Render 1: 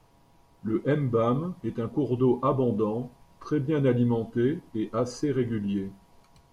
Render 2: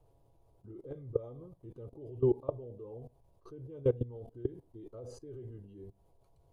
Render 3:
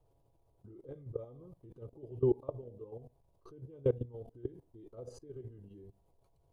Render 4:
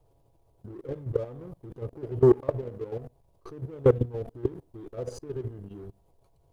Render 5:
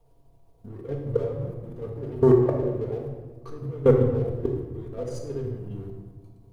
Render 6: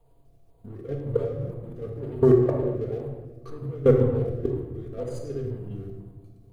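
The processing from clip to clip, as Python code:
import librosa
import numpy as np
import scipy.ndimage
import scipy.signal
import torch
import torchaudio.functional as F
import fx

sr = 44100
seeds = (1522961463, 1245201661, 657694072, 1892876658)

y1 = fx.level_steps(x, sr, step_db=21)
y1 = fx.curve_eq(y1, sr, hz=(120.0, 210.0, 390.0, 610.0, 1000.0, 1900.0, 3700.0, 5400.0, 9700.0), db=(0, -16, -1, -2, -13, -20, -14, -17, -9))
y2 = fx.level_steps(y1, sr, step_db=9)
y2 = F.gain(torch.from_numpy(y2), 1.5).numpy()
y3 = fx.leveller(y2, sr, passes=1)
y3 = F.gain(torch.from_numpy(y3), 8.5).numpy()
y4 = fx.room_shoebox(y3, sr, seeds[0], volume_m3=960.0, walls='mixed', distance_m=1.7)
y5 = fx.filter_lfo_notch(y4, sr, shape='square', hz=2.0, low_hz=930.0, high_hz=5600.0, q=2.7)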